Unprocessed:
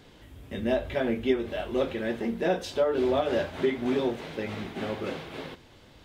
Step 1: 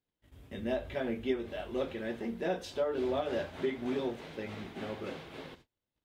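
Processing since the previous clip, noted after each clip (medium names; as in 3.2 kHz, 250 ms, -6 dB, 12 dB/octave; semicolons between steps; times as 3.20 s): gate -48 dBFS, range -31 dB; trim -7 dB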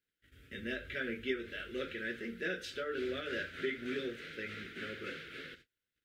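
FFT filter 220 Hz 0 dB, 490 Hz +3 dB, 920 Hz -29 dB, 1.4 kHz +14 dB, 6.1 kHz +5 dB; trim -6.5 dB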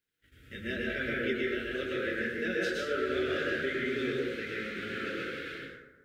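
plate-style reverb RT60 1.2 s, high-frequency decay 0.4×, pre-delay 100 ms, DRR -4 dB; trim +1.5 dB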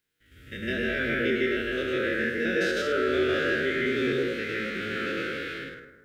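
spectrogram pixelated in time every 50 ms; trim +7 dB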